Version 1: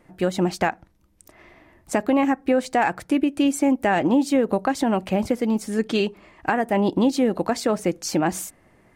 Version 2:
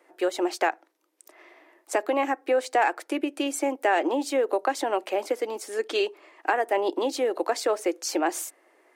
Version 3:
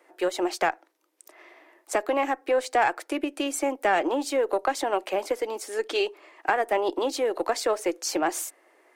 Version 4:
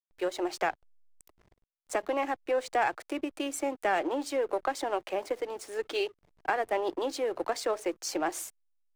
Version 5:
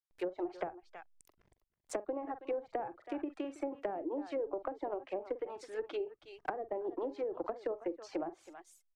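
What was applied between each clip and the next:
steep high-pass 320 Hz 48 dB/oct; gain -1.5 dB
one diode to ground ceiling -13 dBFS; low shelf 180 Hz -7.5 dB; gain +1.5 dB
backlash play -38 dBFS; gain -5 dB
reverb removal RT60 0.68 s; tapped delay 44/323 ms -13.5/-17.5 dB; treble ducked by the level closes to 510 Hz, closed at -26.5 dBFS; gain -4.5 dB

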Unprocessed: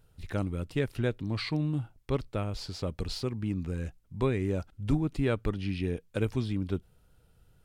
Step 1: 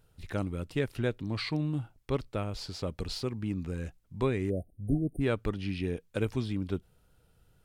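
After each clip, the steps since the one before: spectral delete 4.5–5.21, 740–8600 Hz; low shelf 150 Hz -3.5 dB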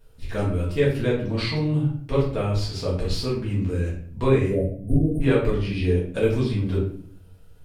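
reverb RT60 0.55 s, pre-delay 4 ms, DRR -7 dB

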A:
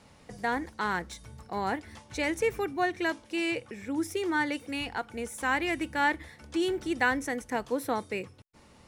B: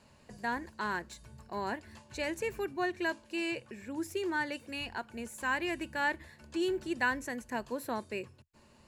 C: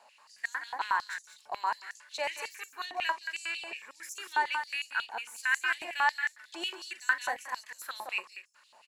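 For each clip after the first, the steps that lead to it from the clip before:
ripple EQ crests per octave 1.4, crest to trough 7 dB; gain -5.5 dB
tapped delay 42/43/170/199 ms -19/-14/-11/-8 dB; stepped high-pass 11 Hz 760–6500 Hz

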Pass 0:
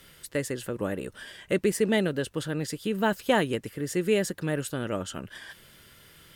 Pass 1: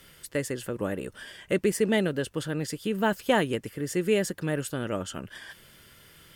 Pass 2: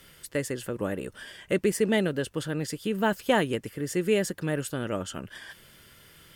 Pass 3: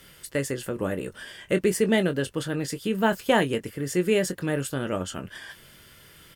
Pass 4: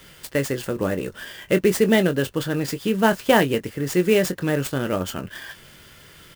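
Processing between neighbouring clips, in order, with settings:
notch 3900 Hz, Q 17
nothing audible
doubler 22 ms -10 dB; gain +2 dB
clock jitter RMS 0.02 ms; gain +4.5 dB

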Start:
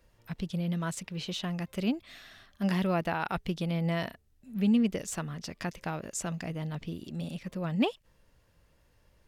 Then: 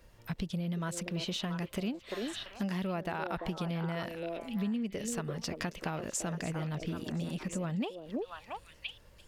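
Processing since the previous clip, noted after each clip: delay with a stepping band-pass 0.34 s, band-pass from 440 Hz, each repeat 1.4 oct, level -3 dB; compressor 6:1, threshold -38 dBFS, peak gain reduction 15.5 dB; gain +5.5 dB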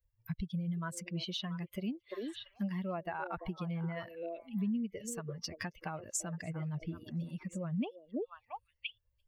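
per-bin expansion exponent 2; gain +1.5 dB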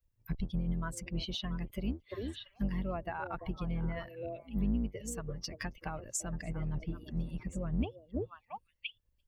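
octaver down 2 oct, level 0 dB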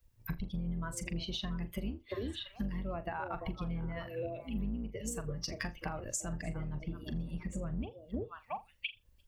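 compressor 6:1, threshold -45 dBFS, peak gain reduction 17 dB; on a send: flutter echo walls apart 7 m, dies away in 0.2 s; on the sum: gain +9.5 dB

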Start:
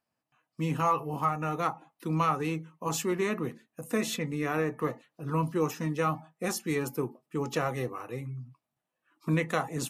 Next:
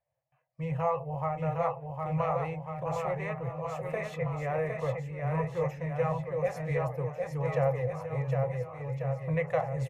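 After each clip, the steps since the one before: EQ curve 140 Hz 0 dB, 220 Hz -29 dB, 370 Hz -26 dB, 540 Hz +3 dB, 1400 Hz -18 dB, 2000 Hz -7 dB, 3400 Hz -22 dB, 14000 Hz -29 dB; on a send: bouncing-ball echo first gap 0.76 s, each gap 0.9×, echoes 5; on the sum: gain +5.5 dB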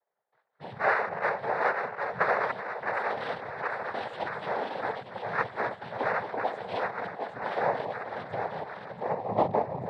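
reverse delay 0.157 s, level -6 dB; band-pass sweep 1000 Hz -> 370 Hz, 8.89–9.5; noise vocoder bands 6; gain +8.5 dB

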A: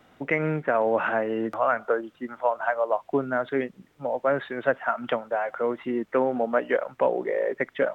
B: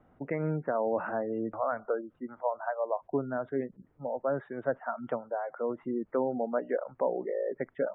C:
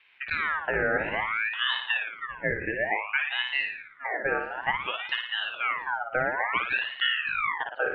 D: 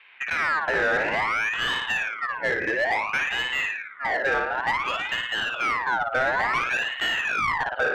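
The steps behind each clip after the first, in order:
spectral gate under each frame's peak -25 dB strong; LPF 1200 Hz 12 dB/oct; low shelf 110 Hz +11 dB; gain -6.5 dB
LPF 2300 Hz 6 dB/oct; flutter echo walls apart 9.7 m, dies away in 0.68 s; ring modulator with a swept carrier 1700 Hz, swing 40%, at 0.57 Hz; gain +5 dB
overdrive pedal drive 20 dB, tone 1300 Hz, clips at -12 dBFS

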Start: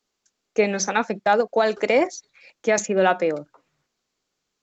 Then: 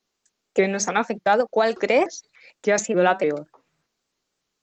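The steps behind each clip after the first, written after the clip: shaped vibrato saw up 3.4 Hz, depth 160 cents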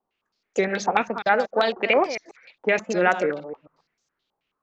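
reverse delay 0.136 s, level -10 dB; stepped low-pass 9.3 Hz 880–6300 Hz; gain -3.5 dB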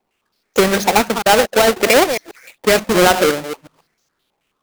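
half-waves squared off; in parallel at 0 dB: limiter -13.5 dBFS, peak gain reduction 8 dB

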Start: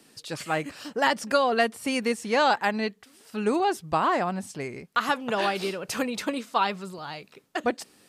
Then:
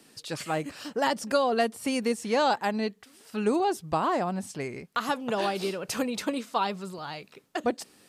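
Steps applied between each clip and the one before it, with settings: dynamic EQ 1900 Hz, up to -7 dB, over -37 dBFS, Q 0.75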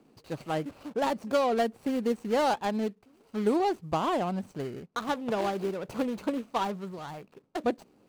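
median filter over 25 samples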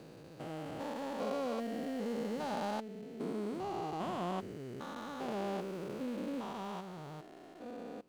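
stepped spectrum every 0.4 s; gain -4 dB

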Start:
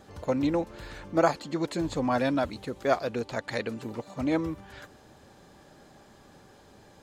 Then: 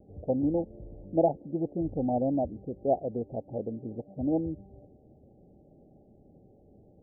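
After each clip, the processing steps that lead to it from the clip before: Wiener smoothing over 41 samples; steep low-pass 810 Hz 96 dB/oct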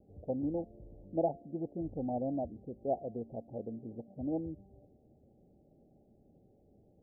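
resonator 230 Hz, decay 0.52 s, harmonics odd, mix 50%; gain -1.5 dB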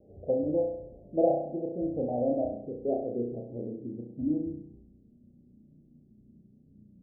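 on a send: flutter echo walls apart 5.7 m, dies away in 0.71 s; on the sum: low-pass sweep 560 Hz -> 220 Hz, 2.26–4.9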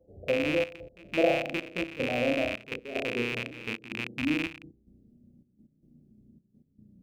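rattling part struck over -42 dBFS, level -20 dBFS; step gate ".xxxxxxx..x." 188 bpm -12 dB; reverse echo 0.795 s -21 dB

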